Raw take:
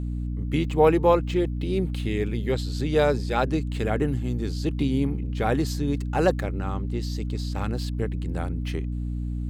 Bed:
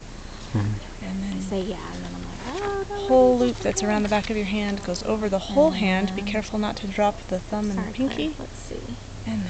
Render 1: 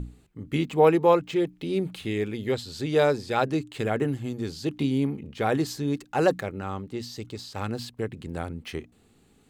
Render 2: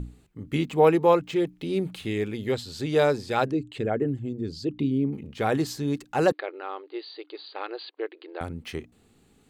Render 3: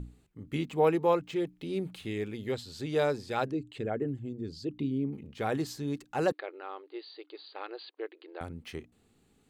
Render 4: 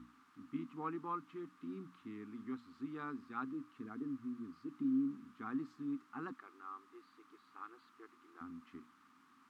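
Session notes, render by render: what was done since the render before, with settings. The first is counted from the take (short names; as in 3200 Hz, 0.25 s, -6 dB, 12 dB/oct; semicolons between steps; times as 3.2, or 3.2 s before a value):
notches 60/120/180/240/300 Hz
3.51–5.13 formant sharpening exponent 1.5; 6.32–8.41 brick-wall FIR band-pass 300–4800 Hz
gain -6.5 dB
requantised 8-bit, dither triangular; double band-pass 560 Hz, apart 2.2 oct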